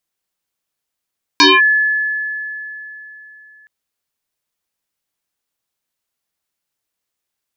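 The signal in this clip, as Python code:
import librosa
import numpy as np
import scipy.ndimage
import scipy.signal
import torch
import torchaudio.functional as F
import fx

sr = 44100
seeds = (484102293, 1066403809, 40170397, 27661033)

y = fx.fm2(sr, length_s=2.27, level_db=-4.5, carrier_hz=1720.0, ratio=0.39, index=5.6, index_s=0.21, decay_s=3.47, shape='linear')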